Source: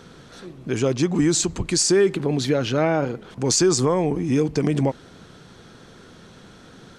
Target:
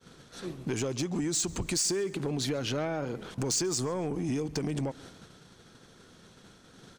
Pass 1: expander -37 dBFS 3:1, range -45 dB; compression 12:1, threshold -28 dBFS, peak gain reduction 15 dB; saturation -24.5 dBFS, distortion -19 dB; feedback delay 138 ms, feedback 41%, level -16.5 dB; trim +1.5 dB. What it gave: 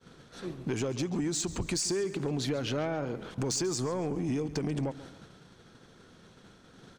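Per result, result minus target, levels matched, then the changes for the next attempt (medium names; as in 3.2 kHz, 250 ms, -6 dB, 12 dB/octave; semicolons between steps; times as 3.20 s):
echo-to-direct +7.5 dB; 8 kHz band -2.5 dB
change: feedback delay 138 ms, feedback 41%, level -24 dB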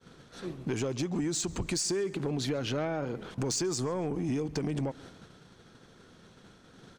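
8 kHz band -2.5 dB
add after compression: treble shelf 5 kHz +8 dB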